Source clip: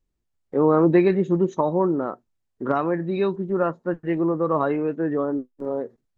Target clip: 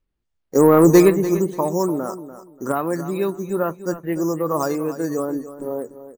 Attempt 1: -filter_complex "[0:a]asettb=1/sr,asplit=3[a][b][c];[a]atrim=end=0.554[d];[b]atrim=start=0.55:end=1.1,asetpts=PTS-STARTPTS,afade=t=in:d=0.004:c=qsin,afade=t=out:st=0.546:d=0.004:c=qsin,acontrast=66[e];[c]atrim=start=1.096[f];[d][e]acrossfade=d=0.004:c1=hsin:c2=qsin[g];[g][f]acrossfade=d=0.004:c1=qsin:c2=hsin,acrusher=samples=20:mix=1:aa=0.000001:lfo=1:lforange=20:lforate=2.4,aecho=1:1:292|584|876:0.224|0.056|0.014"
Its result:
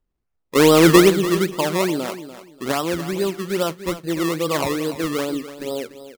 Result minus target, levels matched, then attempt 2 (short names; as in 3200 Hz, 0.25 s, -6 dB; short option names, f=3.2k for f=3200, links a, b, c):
decimation with a swept rate: distortion +13 dB
-filter_complex "[0:a]asettb=1/sr,asplit=3[a][b][c];[a]atrim=end=0.554[d];[b]atrim=start=0.55:end=1.1,asetpts=PTS-STARTPTS,afade=t=in:d=0.004:c=qsin,afade=t=out:st=0.546:d=0.004:c=qsin,acontrast=66[e];[c]atrim=start=1.096[f];[d][e]acrossfade=d=0.004:c1=hsin:c2=qsin[g];[g][f]acrossfade=d=0.004:c1=qsin:c2=hsin,acrusher=samples=5:mix=1:aa=0.000001:lfo=1:lforange=5:lforate=2.4,aecho=1:1:292|584|876:0.224|0.056|0.014"